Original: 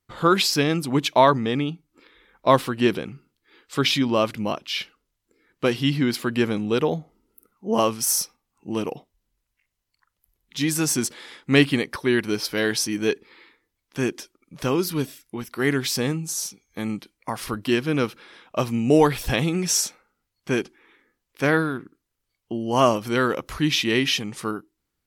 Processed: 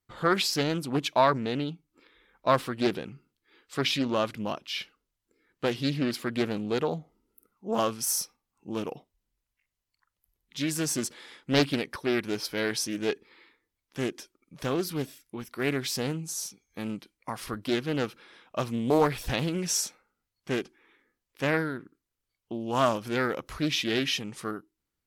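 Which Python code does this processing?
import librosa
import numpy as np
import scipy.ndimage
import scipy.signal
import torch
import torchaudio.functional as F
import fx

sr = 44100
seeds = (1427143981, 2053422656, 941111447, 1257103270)

y = fx.doppler_dist(x, sr, depth_ms=0.45)
y = F.gain(torch.from_numpy(y), -6.0).numpy()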